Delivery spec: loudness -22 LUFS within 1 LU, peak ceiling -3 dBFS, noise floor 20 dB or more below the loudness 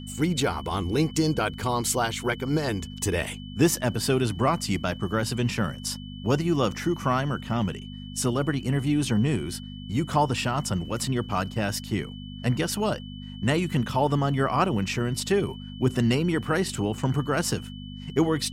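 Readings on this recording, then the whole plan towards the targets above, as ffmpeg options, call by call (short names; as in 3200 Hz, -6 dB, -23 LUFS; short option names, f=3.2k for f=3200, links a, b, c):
hum 50 Hz; harmonics up to 250 Hz; hum level -36 dBFS; steady tone 3000 Hz; tone level -46 dBFS; loudness -26.5 LUFS; peak -9.0 dBFS; loudness target -22.0 LUFS
-> -af "bandreject=f=50:t=h:w=4,bandreject=f=100:t=h:w=4,bandreject=f=150:t=h:w=4,bandreject=f=200:t=h:w=4,bandreject=f=250:t=h:w=4"
-af "bandreject=f=3k:w=30"
-af "volume=4.5dB"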